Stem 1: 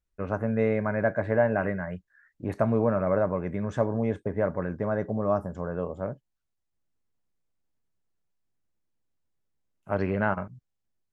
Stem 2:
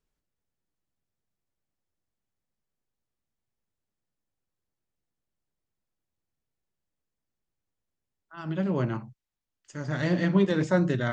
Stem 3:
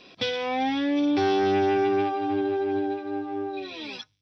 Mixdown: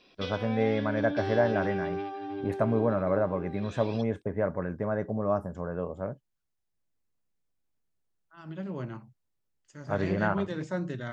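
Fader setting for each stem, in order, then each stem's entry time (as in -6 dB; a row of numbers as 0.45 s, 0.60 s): -2.0 dB, -9.0 dB, -10.5 dB; 0.00 s, 0.00 s, 0.00 s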